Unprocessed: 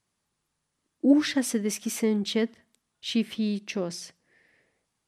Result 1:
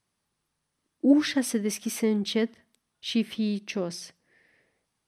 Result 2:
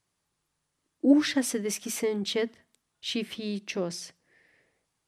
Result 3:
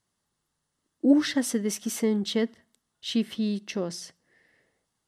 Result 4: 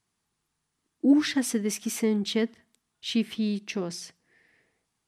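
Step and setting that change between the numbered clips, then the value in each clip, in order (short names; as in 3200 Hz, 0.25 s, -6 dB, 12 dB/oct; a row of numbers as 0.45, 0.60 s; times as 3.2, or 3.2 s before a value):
notch, frequency: 7100, 220, 2400, 560 Hz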